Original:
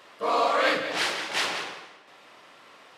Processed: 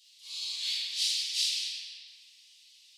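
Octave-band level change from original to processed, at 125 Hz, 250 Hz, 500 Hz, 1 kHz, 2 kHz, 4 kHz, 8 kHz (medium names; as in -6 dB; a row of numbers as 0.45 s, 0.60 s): under -40 dB, under -40 dB, under -40 dB, under -40 dB, -16.5 dB, +2.0 dB, +3.5 dB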